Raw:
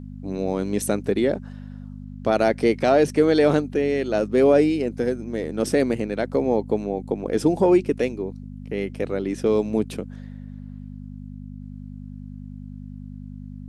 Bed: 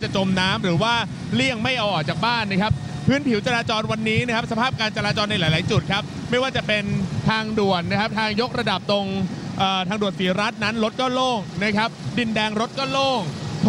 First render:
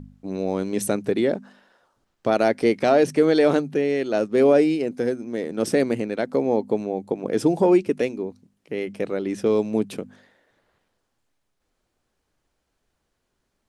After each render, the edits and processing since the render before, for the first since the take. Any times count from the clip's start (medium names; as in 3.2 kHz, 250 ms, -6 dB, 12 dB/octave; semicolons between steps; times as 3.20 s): de-hum 50 Hz, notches 5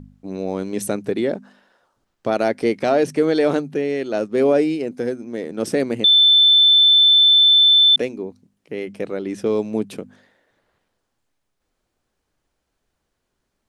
6.04–7.96 s: bleep 3.53 kHz -9 dBFS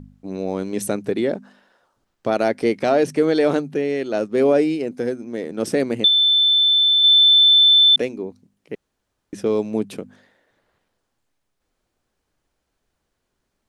6.08–7.04 s: gain -3.5 dB; 8.75–9.33 s: room tone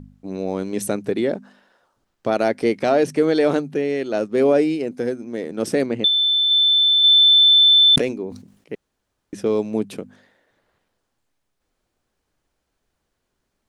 5.86–6.51 s: distance through air 98 m; 7.47–8.73 s: decay stretcher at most 95 dB/s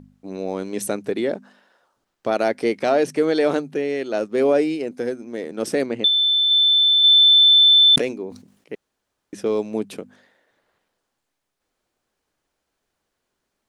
bass shelf 170 Hz -10 dB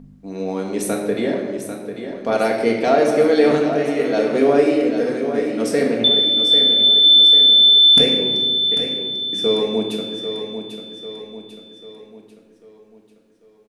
on a send: feedback delay 794 ms, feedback 48%, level -9 dB; on the sum: simulated room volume 850 m³, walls mixed, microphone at 1.7 m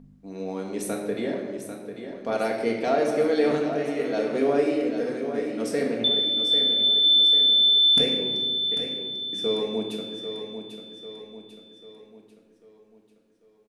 trim -7.5 dB